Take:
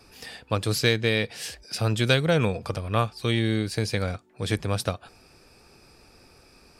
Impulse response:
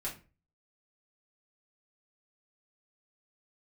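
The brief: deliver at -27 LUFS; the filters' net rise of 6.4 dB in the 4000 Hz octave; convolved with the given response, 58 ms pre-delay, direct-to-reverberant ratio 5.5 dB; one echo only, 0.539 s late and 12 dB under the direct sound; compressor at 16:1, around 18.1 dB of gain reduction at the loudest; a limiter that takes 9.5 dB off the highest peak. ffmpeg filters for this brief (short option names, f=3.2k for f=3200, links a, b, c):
-filter_complex "[0:a]equalizer=f=4k:t=o:g=7.5,acompressor=threshold=-31dB:ratio=16,alimiter=level_in=3dB:limit=-24dB:level=0:latency=1,volume=-3dB,aecho=1:1:539:0.251,asplit=2[a][b];[1:a]atrim=start_sample=2205,adelay=58[c];[b][c]afir=irnorm=-1:irlink=0,volume=-7dB[d];[a][d]amix=inputs=2:normalize=0,volume=10.5dB"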